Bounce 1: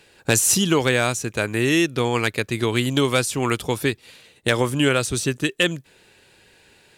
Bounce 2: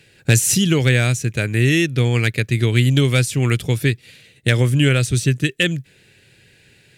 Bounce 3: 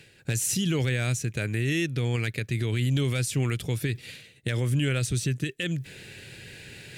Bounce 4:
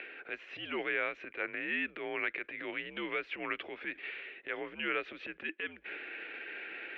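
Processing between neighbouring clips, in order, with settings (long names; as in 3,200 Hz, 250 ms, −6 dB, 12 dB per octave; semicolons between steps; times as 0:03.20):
octave-band graphic EQ 125/1,000/2,000 Hz +12/−12/+6 dB
brickwall limiter −12.5 dBFS, peak gain reduction 11 dB; reversed playback; upward compression, threshold −26 dBFS; reversed playback; level −5.5 dB
transient designer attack −9 dB, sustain +6 dB; upward compression, threshold −32 dBFS; single-sideband voice off tune −76 Hz 490–2,700 Hz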